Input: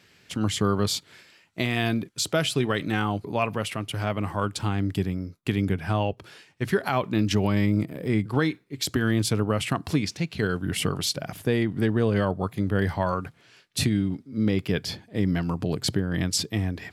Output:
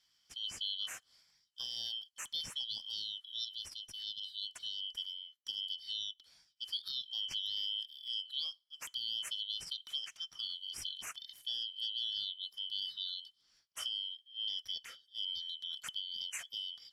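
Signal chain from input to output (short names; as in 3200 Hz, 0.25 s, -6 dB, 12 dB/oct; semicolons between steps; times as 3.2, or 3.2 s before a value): four-band scrambler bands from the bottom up 3412; passive tone stack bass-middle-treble 5-5-5; gain -8.5 dB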